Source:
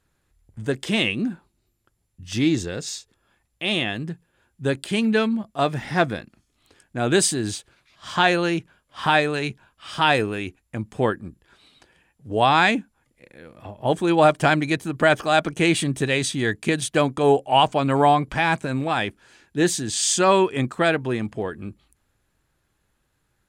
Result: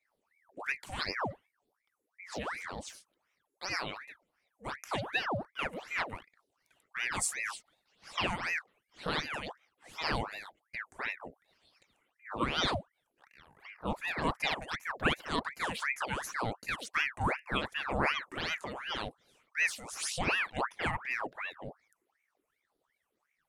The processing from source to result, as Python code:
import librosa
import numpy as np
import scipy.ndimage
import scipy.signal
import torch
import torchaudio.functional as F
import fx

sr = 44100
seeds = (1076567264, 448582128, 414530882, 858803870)

y = fx.phaser_stages(x, sr, stages=6, low_hz=210.0, high_hz=2200.0, hz=1.9, feedback_pct=40)
y = fx.transient(y, sr, attack_db=-3, sustain_db=6, at=(18.48, 19.07))
y = fx.ring_lfo(y, sr, carrier_hz=1300.0, swing_pct=75, hz=2.7)
y = y * librosa.db_to_amplitude(-8.5)